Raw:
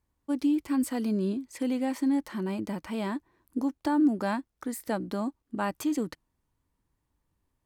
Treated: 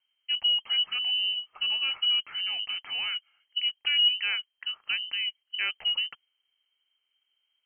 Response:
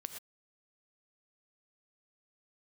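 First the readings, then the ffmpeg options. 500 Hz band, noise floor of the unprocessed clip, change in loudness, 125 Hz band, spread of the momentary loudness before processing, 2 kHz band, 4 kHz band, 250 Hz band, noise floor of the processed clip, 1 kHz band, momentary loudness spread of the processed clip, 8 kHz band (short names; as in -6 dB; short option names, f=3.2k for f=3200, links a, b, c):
under -20 dB, -80 dBFS, +3.5 dB, under -25 dB, 9 LU, +10.0 dB, +27.0 dB, under -40 dB, -80 dBFS, -12.0 dB, 9 LU, under -35 dB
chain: -af "lowpass=f=2.7k:t=q:w=0.5098,lowpass=f=2.7k:t=q:w=0.6013,lowpass=f=2.7k:t=q:w=0.9,lowpass=f=2.7k:t=q:w=2.563,afreqshift=-3200"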